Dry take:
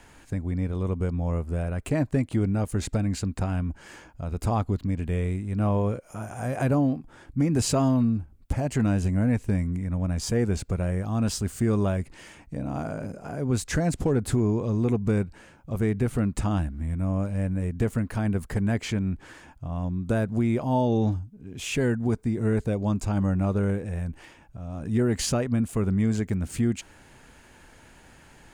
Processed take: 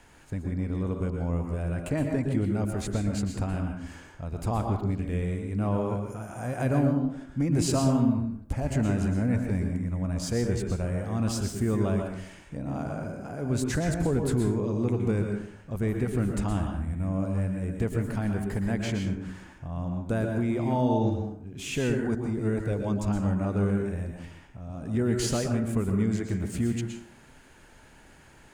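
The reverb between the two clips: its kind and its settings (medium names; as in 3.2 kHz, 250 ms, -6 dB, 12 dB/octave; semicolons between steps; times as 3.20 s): plate-style reverb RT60 0.64 s, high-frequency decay 0.55×, pre-delay 105 ms, DRR 3 dB; trim -3.5 dB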